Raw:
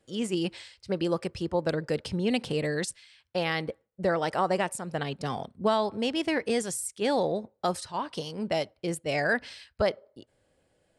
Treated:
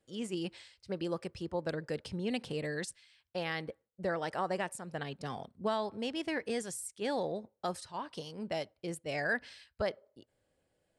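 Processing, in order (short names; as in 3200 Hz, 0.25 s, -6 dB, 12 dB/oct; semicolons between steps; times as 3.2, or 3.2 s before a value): dynamic EQ 1700 Hz, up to +4 dB, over -48 dBFS, Q 5.9; gain -8 dB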